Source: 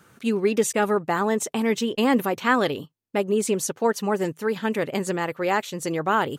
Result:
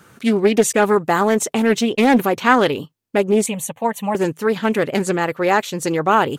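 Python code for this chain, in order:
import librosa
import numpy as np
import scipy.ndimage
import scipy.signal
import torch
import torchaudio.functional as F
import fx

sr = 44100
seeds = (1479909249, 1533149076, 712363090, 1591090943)

y = fx.high_shelf(x, sr, hz=fx.line((0.92, 5000.0), (1.39, 9200.0)), db=7.0, at=(0.92, 1.39), fade=0.02)
y = fx.fixed_phaser(y, sr, hz=1400.0, stages=6, at=(3.46, 4.15))
y = fx.doppler_dist(y, sr, depth_ms=0.27)
y = y * librosa.db_to_amplitude(6.5)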